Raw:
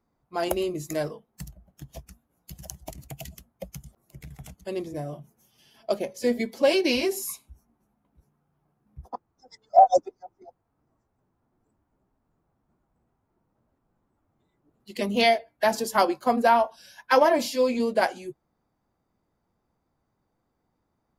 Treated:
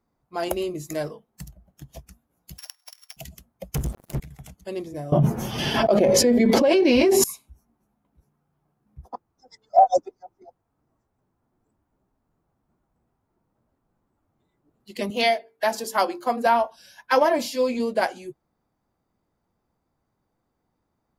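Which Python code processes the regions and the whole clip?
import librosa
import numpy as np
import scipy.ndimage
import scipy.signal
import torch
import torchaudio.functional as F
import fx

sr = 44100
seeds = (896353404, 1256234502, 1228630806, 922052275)

y = fx.chain(x, sr, fx.sample_sort(block=8),
    fx.highpass(hz=1100.0, slope=24),
    fx.band_squash(depth_pct=100), at=(2.58, 3.17))
y = fx.chain(y, sr, fx.low_shelf(hz=400.0, db=10.0),
    fx.leveller(passes=5), at=(3.74, 4.2))
y = fx.chain(y, sr, fx.lowpass(hz=1300.0, slope=6),
    fx.env_flatten(amount_pct=100), at=(5.12, 7.24))
y = fx.chain(y, sr, fx.highpass(hz=280.0, slope=6),
    fx.hum_notches(base_hz=50, count=9), at=(15.1, 16.46))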